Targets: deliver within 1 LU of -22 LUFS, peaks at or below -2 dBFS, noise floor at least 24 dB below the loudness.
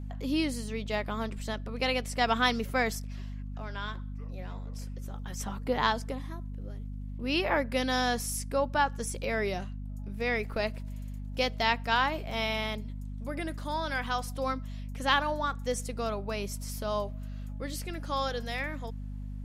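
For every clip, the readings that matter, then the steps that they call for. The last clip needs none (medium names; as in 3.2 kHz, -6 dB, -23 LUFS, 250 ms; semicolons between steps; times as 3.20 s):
hum 50 Hz; highest harmonic 250 Hz; hum level -36 dBFS; loudness -32.0 LUFS; peak level -10.0 dBFS; loudness target -22.0 LUFS
-> de-hum 50 Hz, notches 5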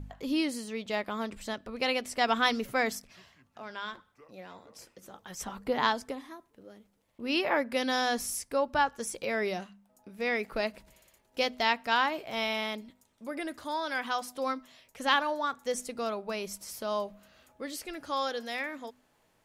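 hum not found; loudness -31.5 LUFS; peak level -10.0 dBFS; loudness target -22.0 LUFS
-> trim +9.5 dB; peak limiter -2 dBFS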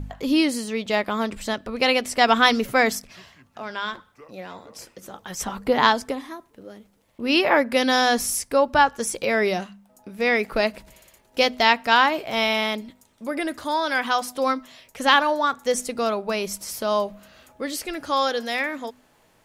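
loudness -22.0 LUFS; peak level -2.0 dBFS; noise floor -60 dBFS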